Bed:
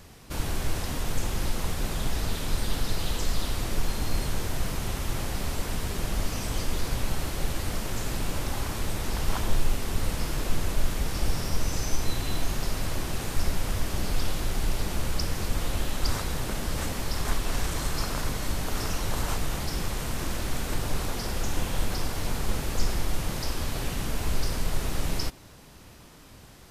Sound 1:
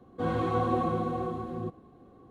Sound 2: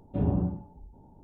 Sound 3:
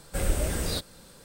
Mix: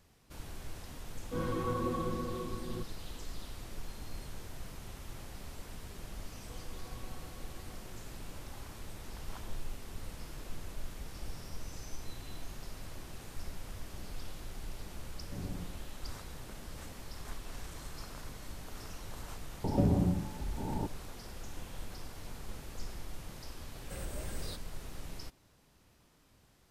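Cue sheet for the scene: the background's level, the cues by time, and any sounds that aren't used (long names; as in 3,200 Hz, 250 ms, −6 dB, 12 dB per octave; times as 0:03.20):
bed −16 dB
0:01.13: mix in 1 −6 dB + notch filter 740 Hz, Q 5.2
0:06.31: mix in 1 −16.5 dB + downward compressor 3 to 1, threshold −39 dBFS
0:15.17: mix in 2 −16.5 dB
0:19.64: mix in 2 −1 dB + multiband upward and downward compressor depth 100%
0:23.76: mix in 3 −14 dB + brickwall limiter −16.5 dBFS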